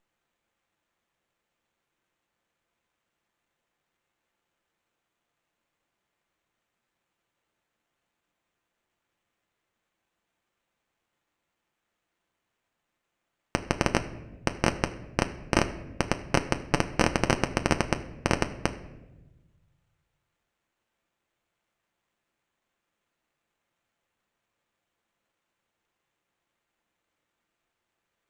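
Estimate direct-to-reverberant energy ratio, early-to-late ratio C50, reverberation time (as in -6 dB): 7.0 dB, 14.0 dB, 1.1 s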